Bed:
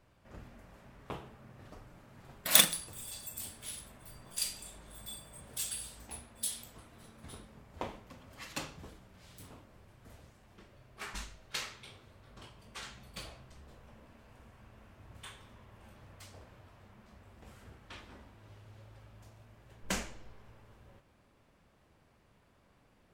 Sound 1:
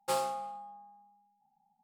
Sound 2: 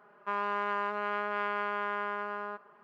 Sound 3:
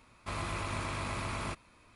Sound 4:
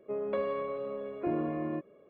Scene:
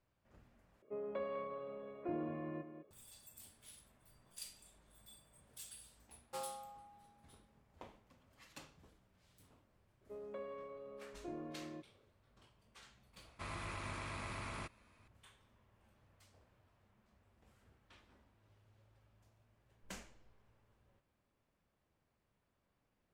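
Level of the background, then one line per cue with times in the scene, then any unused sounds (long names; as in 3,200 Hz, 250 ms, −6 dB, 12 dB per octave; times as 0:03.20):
bed −15 dB
0:00.82: overwrite with 4 −9 dB + single-tap delay 201 ms −10.5 dB
0:06.25: mix in 1 −13.5 dB
0:10.01: mix in 4 −15 dB
0:13.13: mix in 3 −9 dB + parametric band 1,900 Hz +3 dB
not used: 2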